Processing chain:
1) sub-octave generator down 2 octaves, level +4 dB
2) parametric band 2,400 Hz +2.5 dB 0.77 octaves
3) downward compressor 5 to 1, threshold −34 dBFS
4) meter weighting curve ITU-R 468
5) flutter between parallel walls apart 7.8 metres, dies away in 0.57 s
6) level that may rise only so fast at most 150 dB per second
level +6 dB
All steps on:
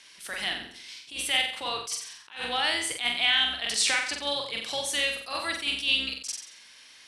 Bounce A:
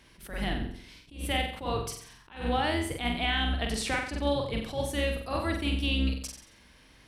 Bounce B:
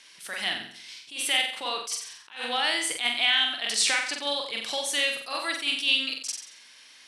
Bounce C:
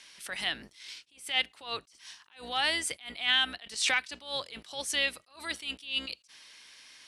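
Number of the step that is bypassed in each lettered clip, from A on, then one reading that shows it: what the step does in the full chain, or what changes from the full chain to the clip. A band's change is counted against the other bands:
4, 250 Hz band +17.0 dB
1, change in integrated loudness +1.0 LU
5, change in crest factor +1.5 dB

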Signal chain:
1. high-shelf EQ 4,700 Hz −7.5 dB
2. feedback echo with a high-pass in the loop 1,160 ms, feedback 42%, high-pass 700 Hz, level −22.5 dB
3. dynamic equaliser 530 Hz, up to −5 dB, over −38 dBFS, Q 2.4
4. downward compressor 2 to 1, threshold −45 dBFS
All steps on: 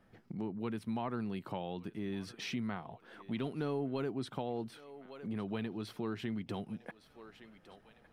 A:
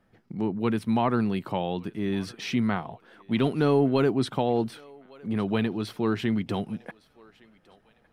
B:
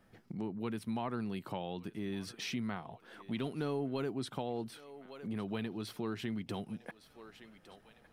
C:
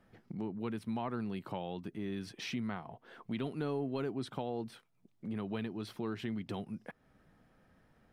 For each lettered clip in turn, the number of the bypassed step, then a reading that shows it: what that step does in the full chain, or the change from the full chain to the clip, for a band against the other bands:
4, average gain reduction 9.5 dB
1, 8 kHz band +4.5 dB
2, change in momentary loudness spread −6 LU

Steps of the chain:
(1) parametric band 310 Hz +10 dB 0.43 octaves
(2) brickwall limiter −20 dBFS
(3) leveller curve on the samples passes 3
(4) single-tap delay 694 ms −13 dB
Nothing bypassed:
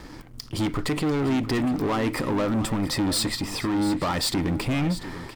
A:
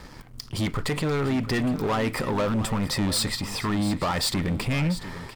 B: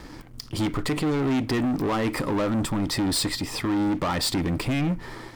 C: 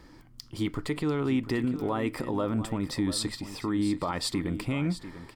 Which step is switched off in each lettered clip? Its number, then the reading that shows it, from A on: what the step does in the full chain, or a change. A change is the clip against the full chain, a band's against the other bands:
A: 1, 250 Hz band −2.5 dB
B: 4, change in crest factor −1.5 dB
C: 3, change in crest factor +4.5 dB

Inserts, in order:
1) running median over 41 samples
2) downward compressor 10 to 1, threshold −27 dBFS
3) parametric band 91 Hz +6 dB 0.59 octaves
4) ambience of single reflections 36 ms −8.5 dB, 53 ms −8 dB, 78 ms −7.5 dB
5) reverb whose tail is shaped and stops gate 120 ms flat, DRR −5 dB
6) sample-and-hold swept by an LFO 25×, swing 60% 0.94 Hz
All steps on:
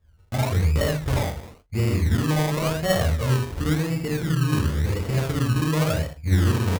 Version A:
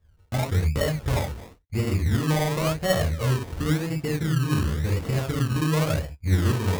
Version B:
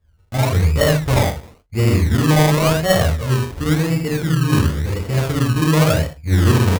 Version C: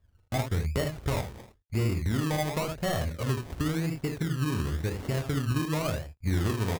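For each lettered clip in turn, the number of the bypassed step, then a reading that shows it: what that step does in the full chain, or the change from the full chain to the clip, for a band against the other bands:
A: 4, change in integrated loudness −1.5 LU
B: 2, average gain reduction 5.0 dB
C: 5, 125 Hz band −1.5 dB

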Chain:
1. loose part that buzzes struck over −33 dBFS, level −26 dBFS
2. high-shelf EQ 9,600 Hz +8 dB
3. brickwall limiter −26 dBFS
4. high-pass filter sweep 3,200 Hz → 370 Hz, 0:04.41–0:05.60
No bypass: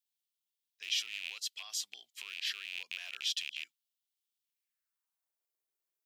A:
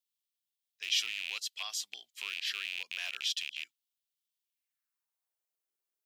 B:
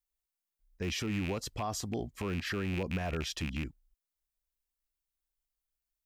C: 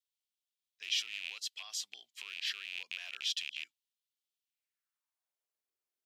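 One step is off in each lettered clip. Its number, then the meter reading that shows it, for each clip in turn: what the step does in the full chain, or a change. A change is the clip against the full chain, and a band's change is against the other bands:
3, average gain reduction 3.0 dB
4, 1 kHz band +22.0 dB
2, 8 kHz band −1.5 dB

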